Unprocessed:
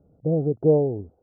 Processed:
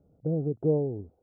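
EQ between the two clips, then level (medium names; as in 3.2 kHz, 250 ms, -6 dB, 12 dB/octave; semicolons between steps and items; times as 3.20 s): dynamic bell 670 Hz, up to -6 dB, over -32 dBFS, Q 1.2; -4.5 dB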